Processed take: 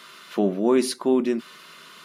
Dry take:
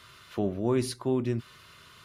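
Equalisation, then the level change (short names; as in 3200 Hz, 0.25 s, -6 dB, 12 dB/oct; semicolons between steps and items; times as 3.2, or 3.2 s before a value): brick-wall FIR high-pass 160 Hz; +7.5 dB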